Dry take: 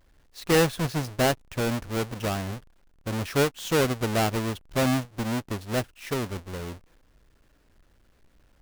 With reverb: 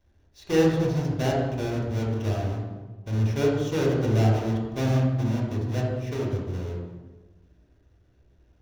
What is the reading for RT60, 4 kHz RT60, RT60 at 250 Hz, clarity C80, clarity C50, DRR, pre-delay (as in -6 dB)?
1.3 s, 0.90 s, 1.5 s, 3.0 dB, 0.0 dB, -4.0 dB, 3 ms